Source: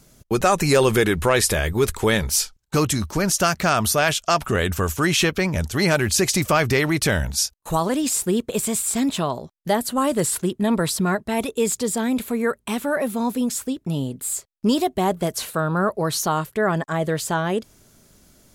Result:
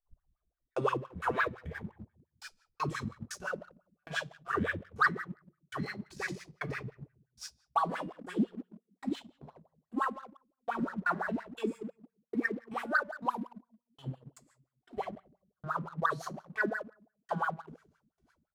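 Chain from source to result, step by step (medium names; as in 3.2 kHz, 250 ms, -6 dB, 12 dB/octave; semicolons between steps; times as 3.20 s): tape start-up on the opening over 0.78 s; bass shelf 450 Hz +7 dB; delay 115 ms -19 dB; trance gate "x.....x..xx.." 118 bpm -60 dB; amplifier tone stack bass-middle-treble 10-0-10; simulated room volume 850 m³, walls furnished, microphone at 3.5 m; in parallel at +2.5 dB: compression 6:1, threshold -33 dBFS, peak gain reduction 18.5 dB; on the sum: wah-wah 5.8 Hz 200–1700 Hz, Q 8.1; waveshaping leveller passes 1; trim +2.5 dB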